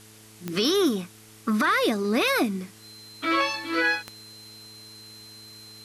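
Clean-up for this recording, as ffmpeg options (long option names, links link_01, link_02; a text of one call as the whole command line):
ffmpeg -i in.wav -af "adeclick=threshold=4,bandreject=frequency=108.6:width_type=h:width=4,bandreject=frequency=217.2:width_type=h:width=4,bandreject=frequency=325.8:width_type=h:width=4,bandreject=frequency=434.4:width_type=h:width=4,bandreject=frequency=4100:width=30,afwtdn=0.0032" out.wav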